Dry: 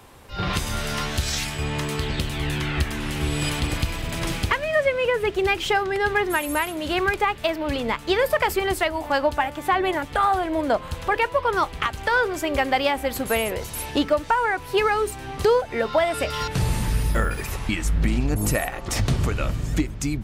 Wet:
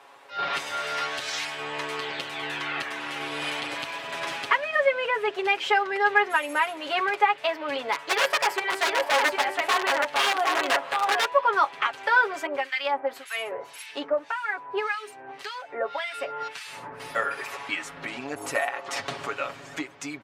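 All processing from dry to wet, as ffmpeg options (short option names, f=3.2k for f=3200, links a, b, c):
-filter_complex "[0:a]asettb=1/sr,asplit=3[a][b][c];[a]atrim=end=7.924[d];[b]atrim=start=7.92:end=11.25,asetpts=PTS-STARTPTS,afade=t=in:d=0.004:c=qsin,afade=t=out:st=3.326:d=0.004:c=qsin,bandreject=f=97.3:t=h:w=4,bandreject=f=194.6:t=h:w=4,bandreject=f=291.9:t=h:w=4,bandreject=f=389.2:t=h:w=4,bandreject=f=486.5:t=h:w=4,bandreject=f=583.8:t=h:w=4,bandreject=f=681.1:t=h:w=4,bandreject=f=778.4:t=h:w=4,bandreject=f=875.7:t=h:w=4,bandreject=f=973:t=h:w=4,bandreject=f=1.0703k:t=h:w=4,bandreject=f=1.1676k:t=h:w=4,bandreject=f=1.2649k:t=h:w=4,bandreject=f=1.3622k:t=h:w=4,bandreject=f=1.4595k:t=h:w=4,bandreject=f=1.5568k:t=h:w=4,bandreject=f=1.6541k:t=h:w=4,bandreject=f=1.7514k:t=h:w=4,bandreject=f=1.8487k:t=h:w=4,bandreject=f=1.946k:t=h:w=4,bandreject=f=2.0433k:t=h:w=4,bandreject=f=2.1406k:t=h:w=4,bandreject=f=2.2379k:t=h:w=4,bandreject=f=2.3352k:t=h:w=4,bandreject=f=2.4325k:t=h:w=4,bandreject=f=2.5298k:t=h:w=4,bandreject=f=2.6271k:t=h:w=4,bandreject=f=2.7244k:t=h:w=4,bandreject=f=2.8217k:t=h:w=4,bandreject=f=2.919k:t=h:w=4,bandreject=f=3.0163k:t=h:w=4,bandreject=f=3.1136k:t=h:w=4,bandreject=f=3.2109k:t=h:w=4,bandreject=f=3.3082k:t=h:w=4,aecho=1:1:762:0.631,atrim=end_sample=146853,aeval=exprs='(mod(5.31*val(0)+1,2)-1)/5.31':c=same[e];[c]atrim=start=11.246[f];[d][e]acrossfade=d=0.004:c1=hsin:c2=qsin[g];[g][f]acrossfade=d=0.004:c1=qsin:c2=hsin,asettb=1/sr,asplit=3[h][i][j];[h]atrim=end=12.464[k];[i]atrim=start=12.46:end=17,asetpts=PTS-STARTPTS,afade=t=in:d=0.004:c=qsin,afade=t=out:st=4.536:d=0.004:c=qsin,highpass=53,acrossover=split=1500[l][m];[l]aeval=exprs='val(0)*(1-1/2+1/2*cos(2*PI*1.8*n/s))':c=same[n];[m]aeval=exprs='val(0)*(1-1/2-1/2*cos(2*PI*1.8*n/s))':c=same[o];[n][o]amix=inputs=2:normalize=0[p];[j]atrim=start=16.996[q];[k][p]acrossfade=d=0.004:c1=hsin:c2=qsin[r];[r][q]acrossfade=d=0.004:c1=qsin:c2=hsin,highpass=680,aemphasis=mode=reproduction:type=75fm,aecho=1:1:7.2:0.81"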